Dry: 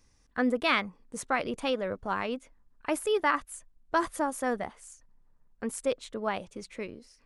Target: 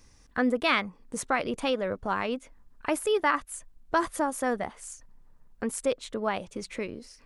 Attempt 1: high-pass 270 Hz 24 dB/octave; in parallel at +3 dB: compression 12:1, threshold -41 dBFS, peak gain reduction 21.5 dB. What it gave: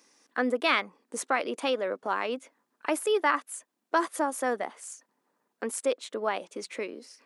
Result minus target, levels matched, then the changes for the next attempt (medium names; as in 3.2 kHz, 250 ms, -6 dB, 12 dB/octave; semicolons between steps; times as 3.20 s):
250 Hz band -3.0 dB
remove: high-pass 270 Hz 24 dB/octave